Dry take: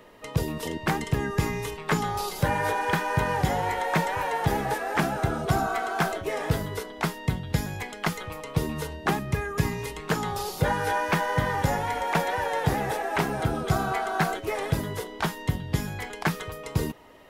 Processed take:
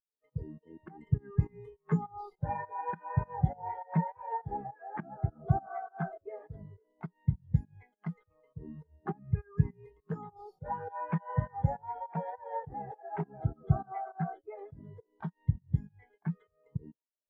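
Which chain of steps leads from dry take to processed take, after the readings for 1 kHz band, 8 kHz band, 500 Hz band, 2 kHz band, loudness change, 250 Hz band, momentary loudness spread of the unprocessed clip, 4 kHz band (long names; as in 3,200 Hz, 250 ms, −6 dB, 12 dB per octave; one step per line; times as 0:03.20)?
−11.0 dB, below −40 dB, −14.0 dB, −22.0 dB, −8.0 dB, −7.5 dB, 6 LU, below −40 dB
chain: fake sidechain pumping 102 BPM, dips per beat 2, −15 dB, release 192 ms
every bin expanded away from the loudest bin 2.5 to 1
level −1 dB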